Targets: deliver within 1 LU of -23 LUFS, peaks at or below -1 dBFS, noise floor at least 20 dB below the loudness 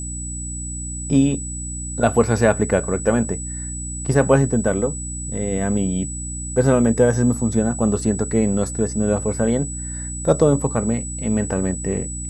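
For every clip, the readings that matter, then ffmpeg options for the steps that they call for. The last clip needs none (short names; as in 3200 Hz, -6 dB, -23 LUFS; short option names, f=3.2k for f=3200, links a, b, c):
hum 60 Hz; harmonics up to 300 Hz; hum level -28 dBFS; steady tone 7900 Hz; tone level -30 dBFS; loudness -20.5 LUFS; peak -1.0 dBFS; loudness target -23.0 LUFS
-> -af "bandreject=f=60:t=h:w=4,bandreject=f=120:t=h:w=4,bandreject=f=180:t=h:w=4,bandreject=f=240:t=h:w=4,bandreject=f=300:t=h:w=4"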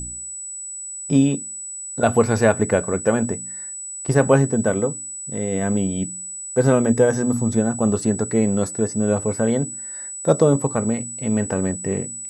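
hum none; steady tone 7900 Hz; tone level -30 dBFS
-> -af "bandreject=f=7.9k:w=30"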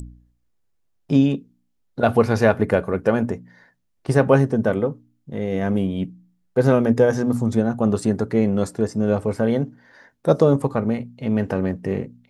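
steady tone none; loudness -21.0 LUFS; peak -1.5 dBFS; loudness target -23.0 LUFS
-> -af "volume=-2dB"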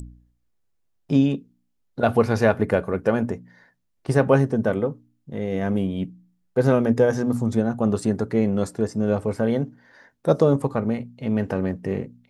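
loudness -23.0 LUFS; peak -3.5 dBFS; noise floor -70 dBFS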